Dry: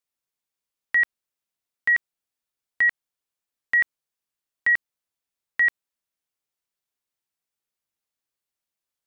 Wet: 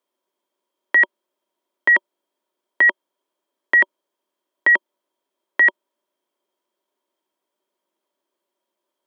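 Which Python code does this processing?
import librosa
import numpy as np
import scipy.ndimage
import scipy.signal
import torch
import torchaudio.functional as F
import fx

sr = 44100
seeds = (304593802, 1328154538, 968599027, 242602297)

y = scipy.signal.sosfilt(scipy.signal.butter(6, 200.0, 'highpass', fs=sr, output='sos'), x)
y = fx.high_shelf(y, sr, hz=2100.0, db=-8.5)
y = fx.small_body(y, sr, hz=(370.0, 580.0, 950.0, 3200.0), ring_ms=35, db=15)
y = y * 10.0 ** (8.5 / 20.0)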